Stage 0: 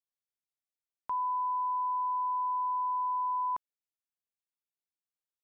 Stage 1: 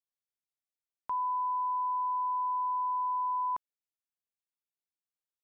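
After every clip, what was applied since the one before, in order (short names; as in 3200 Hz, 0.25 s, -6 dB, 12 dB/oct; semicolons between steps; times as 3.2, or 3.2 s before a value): nothing audible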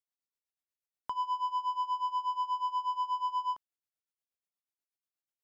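sample leveller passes 1; tremolo 8.3 Hz, depth 86%; gain +1.5 dB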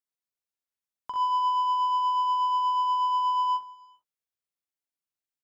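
on a send: early reflections 43 ms -4.5 dB, 63 ms -6.5 dB; on the sum: non-linear reverb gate 0.42 s flat, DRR 12 dB; upward expander 1.5:1, over -38 dBFS; gain +3 dB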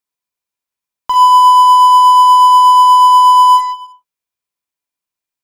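small resonant body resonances 1000/2400 Hz, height 10 dB; in parallel at -11.5 dB: fuzz box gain 33 dB, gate -42 dBFS; on the sum: gain +7 dB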